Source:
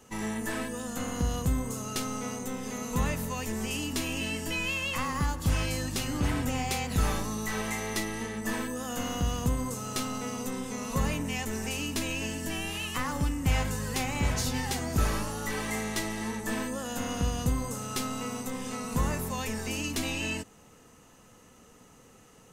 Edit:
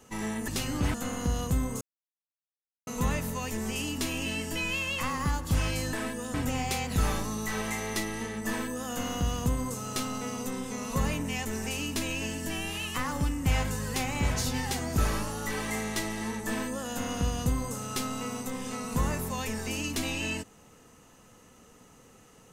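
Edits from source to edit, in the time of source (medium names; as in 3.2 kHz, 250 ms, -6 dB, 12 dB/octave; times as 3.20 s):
0.48–0.89 s: swap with 5.88–6.34 s
1.76–2.82 s: mute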